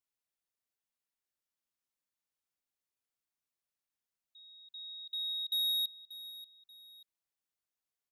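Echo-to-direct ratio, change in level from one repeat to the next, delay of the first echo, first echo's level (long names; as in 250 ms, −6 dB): −14.5 dB, −9.5 dB, 585 ms, −15.0 dB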